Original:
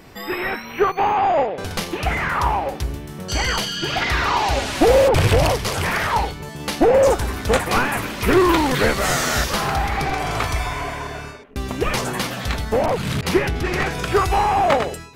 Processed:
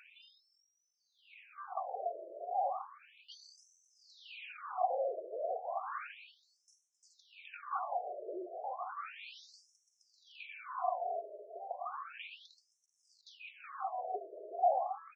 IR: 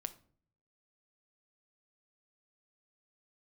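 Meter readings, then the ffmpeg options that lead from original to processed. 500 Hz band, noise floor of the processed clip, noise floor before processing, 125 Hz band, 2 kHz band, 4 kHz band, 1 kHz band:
-21.5 dB, -80 dBFS, -35 dBFS, under -40 dB, -29.0 dB, -30.0 dB, -17.5 dB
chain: -filter_complex "[0:a]acrossover=split=4800[a][b];[a]acompressor=threshold=-25dB:ratio=6[c];[c][b]amix=inputs=2:normalize=0,aemphasis=mode=reproduction:type=50fm,bandreject=f=66.29:t=h:w=4,bandreject=f=132.58:t=h:w=4,bandreject=f=198.87:t=h:w=4,bandreject=f=265.16:t=h:w=4,bandreject=f=331.45:t=h:w=4,bandreject=f=397.74:t=h:w=4,bandreject=f=464.03:t=h:w=4,bandreject=f=530.32:t=h:w=4,bandreject=f=596.61:t=h:w=4,bandreject=f=662.9:t=h:w=4,bandreject=f=729.19:t=h:w=4,bandreject=f=795.48:t=h:w=4,bandreject=f=861.77:t=h:w=4,bandreject=f=928.06:t=h:w=4,bandreject=f=994.35:t=h:w=4,bandreject=f=1.06064k:t=h:w=4,bandreject=f=1.12693k:t=h:w=4,bandreject=f=1.19322k:t=h:w=4,bandreject=f=1.25951k:t=h:w=4,acompressor=mode=upward:threshold=-31dB:ratio=2.5,asplit=3[d][e][f];[d]bandpass=f=730:t=q:w=8,volume=0dB[g];[e]bandpass=f=1.09k:t=q:w=8,volume=-6dB[h];[f]bandpass=f=2.44k:t=q:w=8,volume=-9dB[i];[g][h][i]amix=inputs=3:normalize=0,asoftclip=type=tanh:threshold=-22.5dB,asplit=2[j][k];[k]adelay=373,lowpass=f=4.7k:p=1,volume=-11.5dB,asplit=2[l][m];[m]adelay=373,lowpass=f=4.7k:p=1,volume=0.41,asplit=2[n][o];[o]adelay=373,lowpass=f=4.7k:p=1,volume=0.41,asplit=2[p][q];[q]adelay=373,lowpass=f=4.7k:p=1,volume=0.41[r];[j][l][n][p][r]amix=inputs=5:normalize=0,afftfilt=real='re*between(b*sr/1024,460*pow(7700/460,0.5+0.5*sin(2*PI*0.33*pts/sr))/1.41,460*pow(7700/460,0.5+0.5*sin(2*PI*0.33*pts/sr))*1.41)':imag='im*between(b*sr/1024,460*pow(7700/460,0.5+0.5*sin(2*PI*0.33*pts/sr))/1.41,460*pow(7700/460,0.5+0.5*sin(2*PI*0.33*pts/sr))*1.41)':win_size=1024:overlap=0.75,volume=4dB"

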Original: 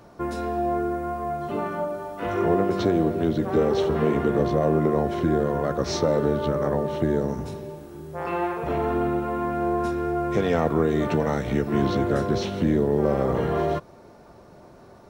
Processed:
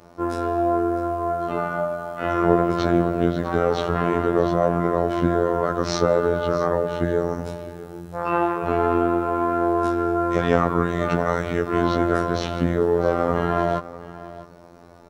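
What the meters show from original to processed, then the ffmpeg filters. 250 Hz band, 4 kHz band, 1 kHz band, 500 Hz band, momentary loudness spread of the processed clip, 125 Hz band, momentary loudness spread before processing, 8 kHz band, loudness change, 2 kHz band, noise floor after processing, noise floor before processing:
+1.0 dB, +1.5 dB, +4.5 dB, +2.0 dB, 8 LU, +0.5 dB, 8 LU, +1.5 dB, +2.0 dB, +5.0 dB, -46 dBFS, -49 dBFS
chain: -af "aecho=1:1:653:0.158,afftfilt=real='hypot(re,im)*cos(PI*b)':imag='0':win_size=2048:overlap=0.75,adynamicequalizer=threshold=0.00398:dfrequency=1300:dqfactor=1.8:tfrequency=1300:tqfactor=1.8:attack=5:release=100:ratio=0.375:range=4:mode=boostabove:tftype=bell,volume=4.5dB"

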